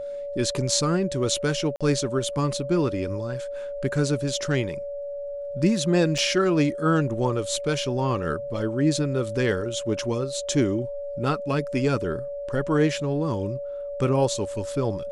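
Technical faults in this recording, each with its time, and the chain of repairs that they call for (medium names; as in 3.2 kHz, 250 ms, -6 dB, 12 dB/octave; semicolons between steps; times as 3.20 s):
whine 570 Hz -30 dBFS
1.76–1.81 s: dropout 46 ms
6.18 s: dropout 4.3 ms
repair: band-stop 570 Hz, Q 30; interpolate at 1.76 s, 46 ms; interpolate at 6.18 s, 4.3 ms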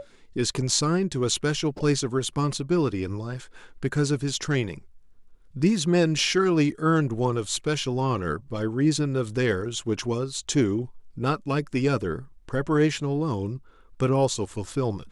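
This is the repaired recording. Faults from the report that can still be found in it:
nothing left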